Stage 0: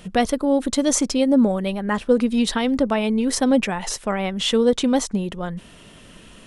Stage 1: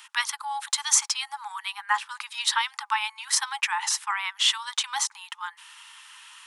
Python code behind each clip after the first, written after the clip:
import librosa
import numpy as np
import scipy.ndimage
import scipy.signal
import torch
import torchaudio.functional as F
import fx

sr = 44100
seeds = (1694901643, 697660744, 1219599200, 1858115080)

y = scipy.signal.sosfilt(scipy.signal.cheby1(10, 1.0, 830.0, 'highpass', fs=sr, output='sos'), x)
y = F.gain(torch.from_numpy(y), 2.5).numpy()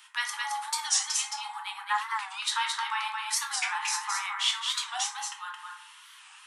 y = x + 10.0 ** (-4.0 / 20.0) * np.pad(x, (int(219 * sr / 1000.0), 0))[:len(x)]
y = fx.rev_plate(y, sr, seeds[0], rt60_s=0.6, hf_ratio=0.45, predelay_ms=0, drr_db=0.0)
y = fx.record_warp(y, sr, rpm=45.0, depth_cents=160.0)
y = F.gain(torch.from_numpy(y), -7.0).numpy()